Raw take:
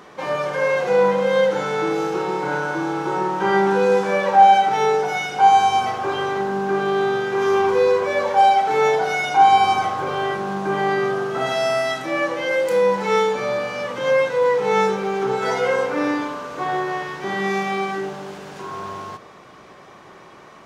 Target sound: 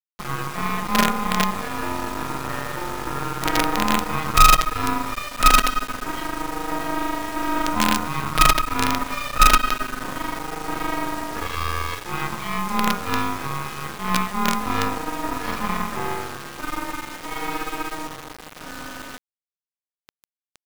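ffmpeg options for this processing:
ffmpeg -i in.wav -af "aeval=exprs='val(0)*sin(2*PI*760*n/s)':channel_layout=same,asetrate=36028,aresample=44100,atempo=1.22405,acrusher=bits=3:dc=4:mix=0:aa=0.000001,volume=1.5dB" out.wav

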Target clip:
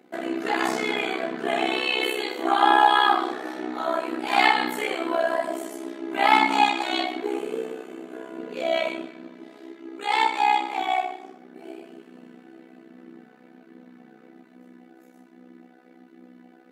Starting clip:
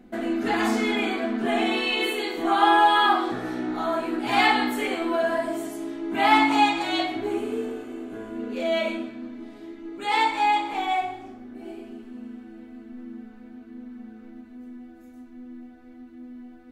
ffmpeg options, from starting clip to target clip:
ffmpeg -i in.wav -af "highpass=frequency=320:width=0.5412,highpass=frequency=320:width=1.3066,tremolo=f=64:d=0.788,volume=4dB" out.wav

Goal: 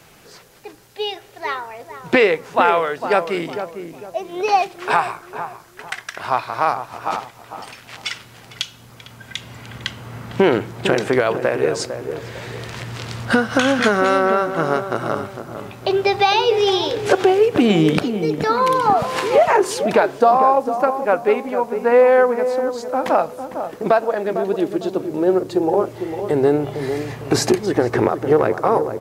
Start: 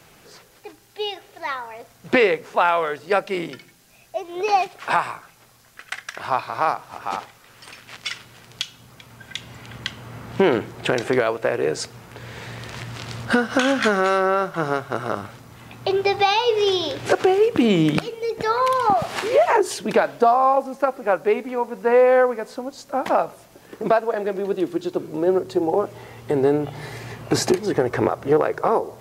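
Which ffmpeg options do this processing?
ffmpeg -i in.wav -filter_complex "[0:a]asplit=2[link_01][link_02];[link_02]adelay=453,lowpass=frequency=910:poles=1,volume=-7.5dB,asplit=2[link_03][link_04];[link_04]adelay=453,lowpass=frequency=910:poles=1,volume=0.4,asplit=2[link_05][link_06];[link_06]adelay=453,lowpass=frequency=910:poles=1,volume=0.4,asplit=2[link_07][link_08];[link_08]adelay=453,lowpass=frequency=910:poles=1,volume=0.4,asplit=2[link_09][link_10];[link_10]adelay=453,lowpass=frequency=910:poles=1,volume=0.4[link_11];[link_01][link_03][link_05][link_07][link_09][link_11]amix=inputs=6:normalize=0,volume=2.5dB" out.wav

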